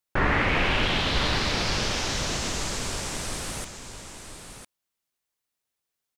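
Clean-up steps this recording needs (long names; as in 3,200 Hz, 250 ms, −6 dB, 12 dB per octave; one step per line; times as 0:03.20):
echo removal 1,004 ms −9 dB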